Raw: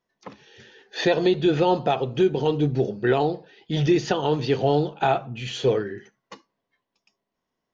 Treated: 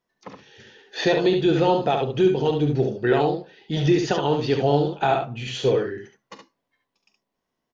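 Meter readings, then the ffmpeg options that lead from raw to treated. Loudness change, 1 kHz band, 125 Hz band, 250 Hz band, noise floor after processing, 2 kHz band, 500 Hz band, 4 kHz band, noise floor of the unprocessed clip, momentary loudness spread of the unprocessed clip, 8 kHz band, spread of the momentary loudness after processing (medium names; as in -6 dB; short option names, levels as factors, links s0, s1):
+1.0 dB, +1.0 dB, +1.0 dB, +1.0 dB, -81 dBFS, +1.0 dB, +1.5 dB, +1.0 dB, -82 dBFS, 9 LU, no reading, 9 LU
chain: -af "aecho=1:1:43|70:0.2|0.531"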